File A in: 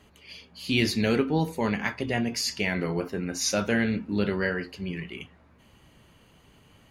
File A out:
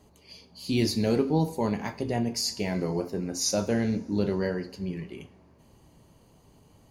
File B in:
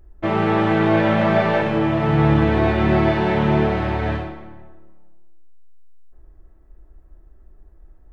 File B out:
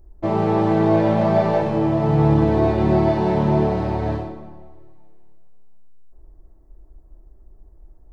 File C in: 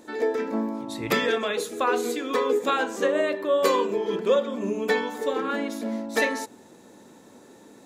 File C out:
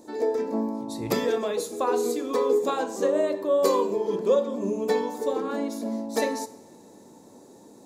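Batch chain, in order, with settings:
high-order bell 2.1 kHz -10.5 dB; two-slope reverb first 0.56 s, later 3.4 s, from -19 dB, DRR 12.5 dB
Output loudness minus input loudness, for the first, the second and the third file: -1.0 LU, -0.5 LU, -0.5 LU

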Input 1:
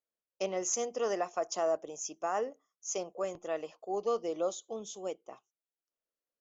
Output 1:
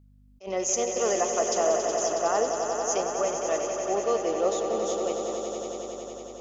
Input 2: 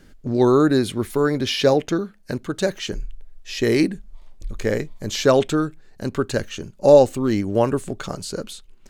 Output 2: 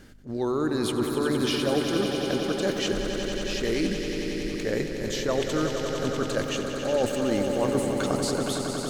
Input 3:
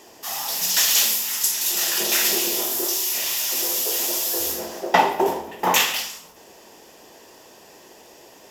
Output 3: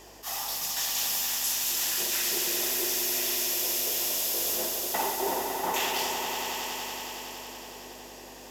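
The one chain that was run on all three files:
bass shelf 110 Hz -9.5 dB; reverse; compression 5:1, threshold -27 dBFS; reverse; hum 50 Hz, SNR 25 dB; echo with a slow build-up 92 ms, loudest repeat 5, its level -9 dB; attacks held to a fixed rise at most 260 dB/s; normalise loudness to -27 LUFS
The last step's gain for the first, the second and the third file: +6.5 dB, +2.0 dB, -2.0 dB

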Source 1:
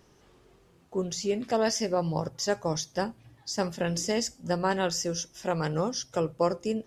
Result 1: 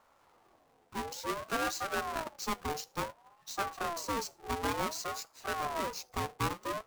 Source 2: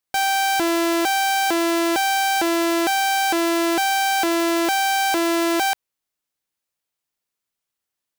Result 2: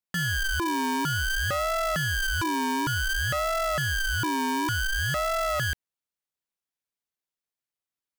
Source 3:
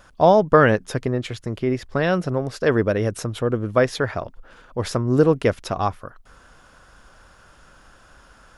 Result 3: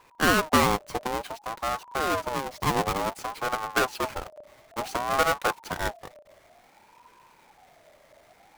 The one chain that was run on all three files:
square wave that keeps the level; ring modulator with a swept carrier 790 Hz, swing 25%, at 0.56 Hz; trim -8.5 dB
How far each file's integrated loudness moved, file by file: -6.5 LU, -7.0 LU, -6.0 LU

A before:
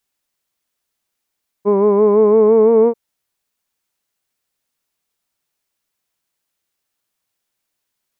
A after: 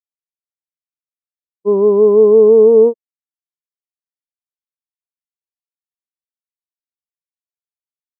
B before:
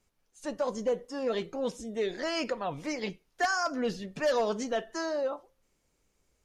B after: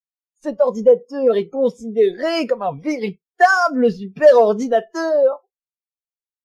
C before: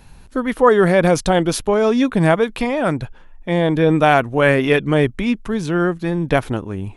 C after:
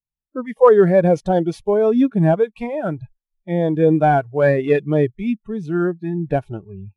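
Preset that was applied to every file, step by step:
CVSD coder 64 kbps; spectral noise reduction 22 dB; bass shelf 60 Hz -5.5 dB; spectral contrast expander 1.5:1; peak normalisation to -1.5 dBFS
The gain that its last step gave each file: +2.5 dB, +17.5 dB, +0.5 dB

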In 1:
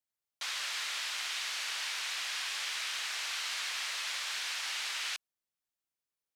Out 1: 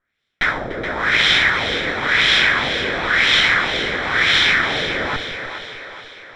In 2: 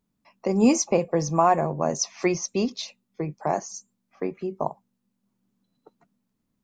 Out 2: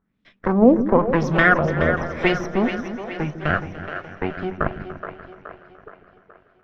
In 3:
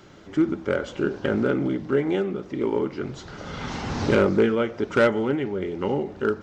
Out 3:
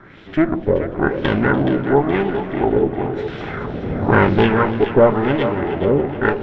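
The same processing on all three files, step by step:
comb filter that takes the minimum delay 0.55 ms; LFO low-pass sine 0.97 Hz 480–3200 Hz; two-band feedback delay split 360 Hz, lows 151 ms, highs 423 ms, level -9 dB; modulated delay 293 ms, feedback 61%, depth 51 cents, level -16.5 dB; peak normalisation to -1.5 dBFS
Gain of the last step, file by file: +21.5 dB, +4.0 dB, +5.5 dB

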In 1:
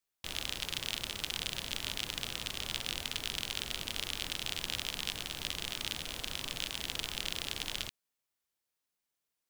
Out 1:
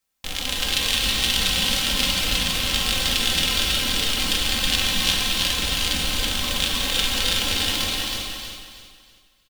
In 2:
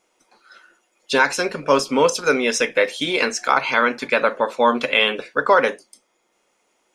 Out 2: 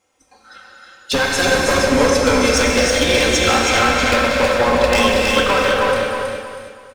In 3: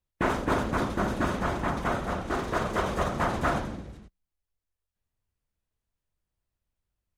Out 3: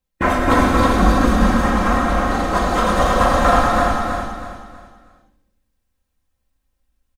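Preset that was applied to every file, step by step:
octave divider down 2 oct, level 0 dB; spectral noise reduction 6 dB; comb 3.8 ms, depth 61%; dynamic bell 680 Hz, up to +5 dB, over -34 dBFS, Q 3.6; compression 5:1, threshold -18 dBFS; wavefolder -16 dBFS; on a send: feedback delay 321 ms, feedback 34%, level -4 dB; on the sum: gated-style reverb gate 440 ms flat, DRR -1.5 dB; peak normalisation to -2 dBFS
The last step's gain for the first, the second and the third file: +13.5 dB, +4.5 dB, +9.5 dB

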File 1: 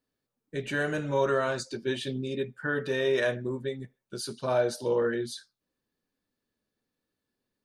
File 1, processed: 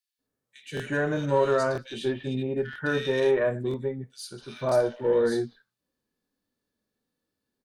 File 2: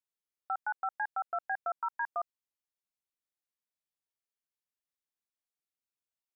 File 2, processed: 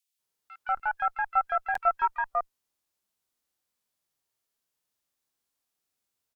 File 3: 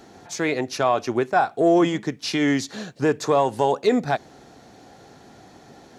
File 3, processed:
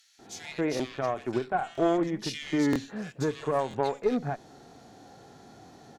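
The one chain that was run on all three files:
Chebyshev shaper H 2 -12 dB, 3 -17 dB, 4 -34 dB, 8 -29 dB, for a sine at -7.5 dBFS; compression 5:1, threshold -25 dBFS; bands offset in time highs, lows 190 ms, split 2.2 kHz; harmonic-percussive split percussive -9 dB; crackling interface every 0.98 s, samples 1024, repeat, from 0.75 s; peak normalisation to -12 dBFS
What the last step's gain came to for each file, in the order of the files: +9.5 dB, +19.0 dB, +4.0 dB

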